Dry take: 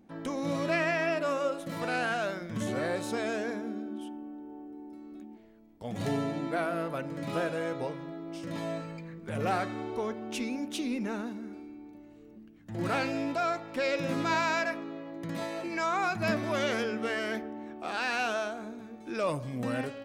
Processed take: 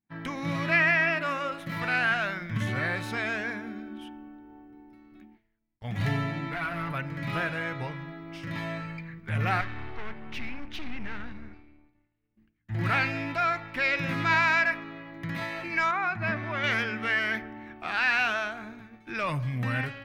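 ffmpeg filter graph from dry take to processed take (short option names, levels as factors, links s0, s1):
-filter_complex "[0:a]asettb=1/sr,asplit=3[s0][s1][s2];[s0]atrim=end=6.524[s3];[s1]atrim=start=6.52:end=6.92,asetpts=PTS-STARTPTS,afade=t=in:d=0.004:c=qsin,afade=t=out:st=0.396:d=0.004:c=qsin,aecho=1:1:7:0.89,atrim=end_sample=17640,acompressor=threshold=0.0355:ratio=10:attack=3.2:release=140:knee=1:detection=peak,asoftclip=type=hard:threshold=0.0299[s4];[s2]atrim=start=6.916[s5];[s3][s4]acrossfade=d=0.004:c1=hsin:c2=qsin[s6];[s6][s5]acrossfade=d=0.004:c1=qsin:c2=hsin,asettb=1/sr,asplit=3[s7][s8][s9];[s7]atrim=end=9.614[s10];[s8]atrim=start=9.61:end=12.37,asetpts=PTS-STARTPTS,afade=t=in:d=0.004:c=qsin,afade=t=out:st=2.756:d=0.004:c=qsin,lowpass=f=5500:w=0.5412,lowpass=f=5500:w=1.3066,aeval=exprs='(tanh(63.1*val(0)+0.75)-tanh(0.75))/63.1':c=same[s11];[s9]atrim=start=12.366[s12];[s10][s11]acrossfade=d=0.004:c1=hsin:c2=qsin[s13];[s13][s12]acrossfade=d=0.004:c1=qsin:c2=hsin,asettb=1/sr,asplit=3[s14][s15][s16];[s14]atrim=end=15.914[s17];[s15]atrim=start=15.91:end=16.64,asetpts=PTS-STARTPTS,afade=t=in:d=0.004:c=qsin,afade=t=out:st=0.726:d=0.004:c=qsin,lowpass=f=1400:p=1,lowshelf=f=140:g=-10.5[s18];[s16]atrim=start=16.636[s19];[s17][s18]acrossfade=d=0.004:c1=hsin:c2=qsin[s20];[s20][s19]acrossfade=d=0.004:c1=qsin:c2=hsin,asubboost=boost=2.5:cutoff=74,agate=range=0.0224:threshold=0.00794:ratio=3:detection=peak,equalizer=f=125:t=o:w=1:g=9,equalizer=f=250:t=o:w=1:g=-4,equalizer=f=500:t=o:w=1:g=-10,equalizer=f=2000:t=o:w=1:g=9,equalizer=f=8000:t=o:w=1:g=-11,volume=1.41"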